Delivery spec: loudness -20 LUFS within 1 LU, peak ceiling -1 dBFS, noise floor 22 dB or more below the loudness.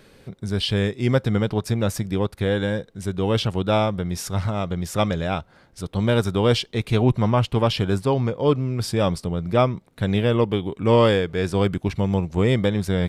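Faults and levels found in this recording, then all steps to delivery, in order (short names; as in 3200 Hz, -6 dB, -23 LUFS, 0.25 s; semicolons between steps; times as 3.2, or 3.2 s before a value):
loudness -22.5 LUFS; peak -5.5 dBFS; loudness target -20.0 LUFS
-> gain +2.5 dB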